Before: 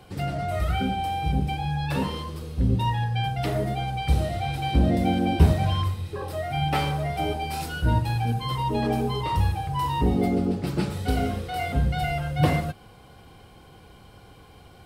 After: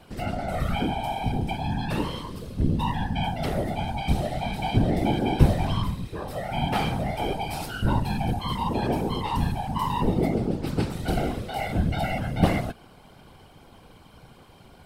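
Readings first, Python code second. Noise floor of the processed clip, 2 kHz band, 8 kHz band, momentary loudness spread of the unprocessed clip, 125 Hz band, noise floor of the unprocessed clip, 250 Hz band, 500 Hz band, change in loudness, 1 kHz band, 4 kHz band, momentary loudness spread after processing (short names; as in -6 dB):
-51 dBFS, -1.0 dB, -1.0 dB, 7 LU, -2.5 dB, -50 dBFS, 0.0 dB, 0.0 dB, -1.5 dB, -1.0 dB, -1.0 dB, 7 LU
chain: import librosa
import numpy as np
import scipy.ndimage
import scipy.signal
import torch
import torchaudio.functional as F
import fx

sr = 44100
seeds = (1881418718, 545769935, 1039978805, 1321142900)

y = fx.whisperise(x, sr, seeds[0])
y = y * 10.0 ** (-1.0 / 20.0)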